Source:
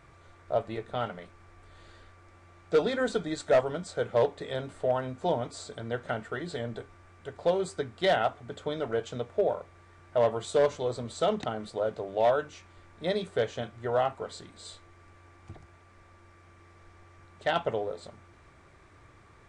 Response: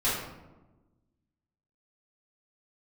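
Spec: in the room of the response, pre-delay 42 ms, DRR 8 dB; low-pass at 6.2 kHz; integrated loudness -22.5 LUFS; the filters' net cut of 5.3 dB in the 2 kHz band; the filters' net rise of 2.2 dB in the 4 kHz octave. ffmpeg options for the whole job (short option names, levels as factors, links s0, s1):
-filter_complex "[0:a]lowpass=6200,equalizer=f=2000:t=o:g=-8.5,equalizer=f=4000:t=o:g=6,asplit=2[s0][s1];[1:a]atrim=start_sample=2205,adelay=42[s2];[s1][s2]afir=irnorm=-1:irlink=0,volume=0.112[s3];[s0][s3]amix=inputs=2:normalize=0,volume=2.51"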